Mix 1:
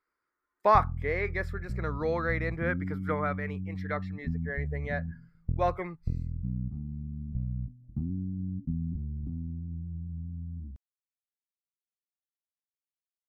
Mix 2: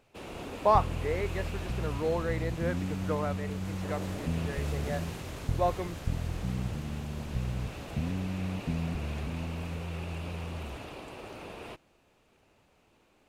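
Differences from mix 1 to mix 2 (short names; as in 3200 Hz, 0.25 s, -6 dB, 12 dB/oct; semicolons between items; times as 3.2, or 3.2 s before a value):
first sound: unmuted; master: add band shelf 1700 Hz -8.5 dB 1.2 oct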